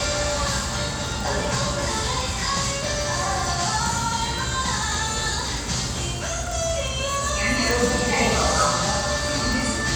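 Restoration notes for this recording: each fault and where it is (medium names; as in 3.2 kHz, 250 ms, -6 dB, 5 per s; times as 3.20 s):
crackle 36 per s -27 dBFS
7.71 s: pop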